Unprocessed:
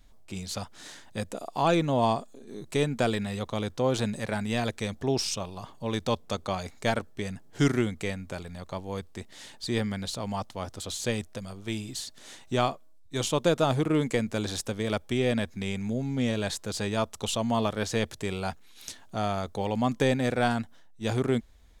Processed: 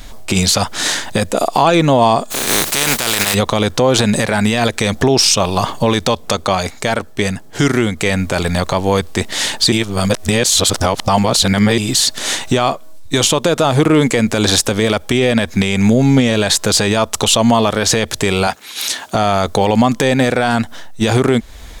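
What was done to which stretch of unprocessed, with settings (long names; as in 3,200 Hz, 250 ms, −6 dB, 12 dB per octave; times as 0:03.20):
0:02.30–0:03.33: compressing power law on the bin magnitudes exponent 0.33
0:06.34–0:08.15: duck −8 dB, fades 0.20 s
0:09.72–0:11.78: reverse
0:18.47–0:19.15: high-pass filter 350 Hz 6 dB per octave
whole clip: low-shelf EQ 390 Hz −5.5 dB; downward compressor 2.5 to 1, threshold −37 dBFS; boost into a limiter +29.5 dB; level −1 dB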